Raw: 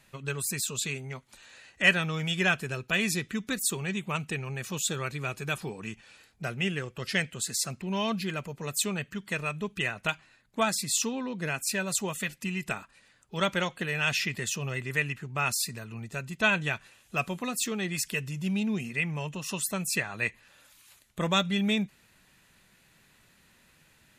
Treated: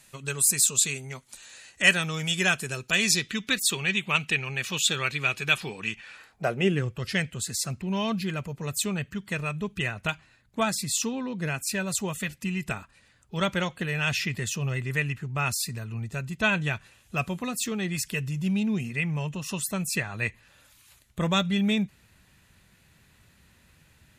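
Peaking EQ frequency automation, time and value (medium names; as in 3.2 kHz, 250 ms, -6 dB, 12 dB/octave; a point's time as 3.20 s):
peaking EQ +12 dB 1.8 oct
2.76 s 8.9 kHz
3.50 s 2.9 kHz
5.91 s 2.9 kHz
6.68 s 360 Hz
6.96 s 73 Hz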